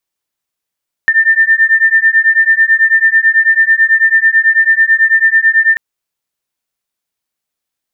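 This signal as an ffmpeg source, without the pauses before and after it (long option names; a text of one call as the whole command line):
ffmpeg -f lavfi -i "aevalsrc='0.335*(sin(2*PI*1790*t)+sin(2*PI*1799.1*t))':duration=4.69:sample_rate=44100" out.wav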